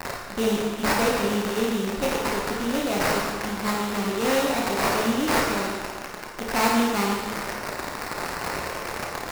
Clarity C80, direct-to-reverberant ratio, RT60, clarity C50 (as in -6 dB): 2.5 dB, -2.0 dB, 1.5 s, 0.5 dB